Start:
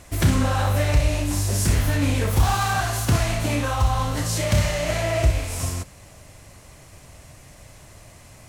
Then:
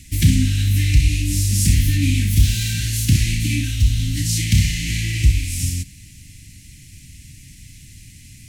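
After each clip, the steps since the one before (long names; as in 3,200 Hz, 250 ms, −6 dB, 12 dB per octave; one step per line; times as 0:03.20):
inverse Chebyshev band-stop filter 490–1,200 Hz, stop band 50 dB
level +5 dB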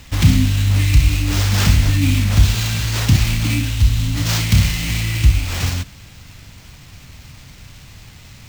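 sample-rate reduction 11,000 Hz, jitter 20%
level +2 dB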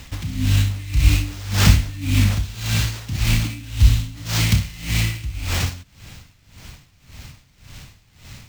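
tremolo with a sine in dB 1.8 Hz, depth 19 dB
level +2 dB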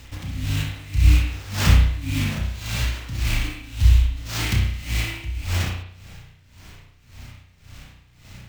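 convolution reverb RT60 0.65 s, pre-delay 33 ms, DRR −2 dB
level −6 dB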